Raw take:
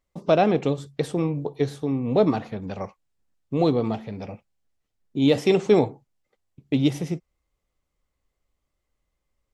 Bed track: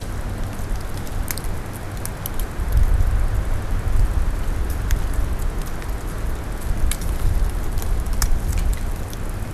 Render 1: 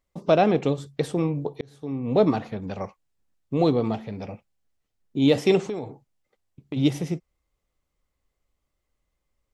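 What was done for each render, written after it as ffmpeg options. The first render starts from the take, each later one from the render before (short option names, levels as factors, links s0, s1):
-filter_complex "[0:a]asplit=3[s0][s1][s2];[s0]afade=t=out:st=5.64:d=0.02[s3];[s1]acompressor=threshold=0.0398:ratio=5:attack=3.2:release=140:knee=1:detection=peak,afade=t=in:st=5.64:d=0.02,afade=t=out:st=6.76:d=0.02[s4];[s2]afade=t=in:st=6.76:d=0.02[s5];[s3][s4][s5]amix=inputs=3:normalize=0,asplit=2[s6][s7];[s6]atrim=end=1.61,asetpts=PTS-STARTPTS,afade=t=out:st=1.606:d=0.004:c=hsin[s8];[s7]atrim=start=1.61,asetpts=PTS-STARTPTS,afade=t=in:d=0.56[s9];[s8][s9]concat=n=2:v=0:a=1"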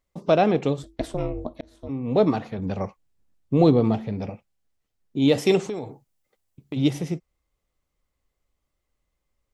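-filter_complex "[0:a]asplit=3[s0][s1][s2];[s0]afade=t=out:st=0.82:d=0.02[s3];[s1]aeval=exprs='val(0)*sin(2*PI*190*n/s)':c=same,afade=t=in:st=0.82:d=0.02,afade=t=out:st=1.88:d=0.02[s4];[s2]afade=t=in:st=1.88:d=0.02[s5];[s3][s4][s5]amix=inputs=3:normalize=0,asettb=1/sr,asplit=3[s6][s7][s8];[s6]atrim=end=2.584[s9];[s7]atrim=start=2.58:end=4.3,asetpts=PTS-STARTPTS,afade=t=in:d=0.004:c=qsin,afade=t=out:st=1.716:d=0.004:c=qsin,lowshelf=f=450:g=6.5[s10];[s8]atrim=start=4.296[s11];[s9][s10]acrossfade=d=0.004:c1=hsin:c2=qsin[s12];[s12][s11]acrossfade=d=0.004:c1=qsin:c2=hsin,asettb=1/sr,asplit=3[s13][s14][s15];[s13]atrim=end=5.384[s16];[s14]atrim=start=5.38:end=6.77,asetpts=PTS-STARTPTS,afade=t=in:d=0.004:c=qsin,afade=t=out:st=1.386:d=0.004:c=qsin,highshelf=f=7600:g=9.5[s17];[s15]atrim=start=6.766[s18];[s16][s17]acrossfade=d=0.004:c1=hsin:c2=qsin[s19];[s19][s18]acrossfade=d=0.004:c1=qsin:c2=hsin"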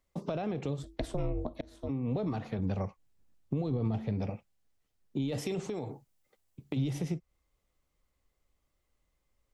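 -filter_complex "[0:a]alimiter=limit=0.158:level=0:latency=1:release=18,acrossover=split=130[s0][s1];[s1]acompressor=threshold=0.0224:ratio=6[s2];[s0][s2]amix=inputs=2:normalize=0"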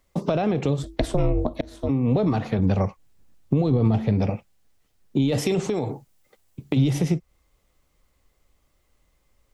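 -af "volume=3.76"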